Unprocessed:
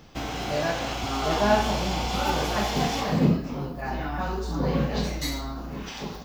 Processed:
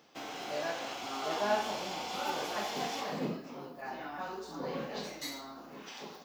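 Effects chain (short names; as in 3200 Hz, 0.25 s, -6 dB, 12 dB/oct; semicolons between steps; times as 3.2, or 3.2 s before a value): HPF 310 Hz 12 dB/oct; gain -8.5 dB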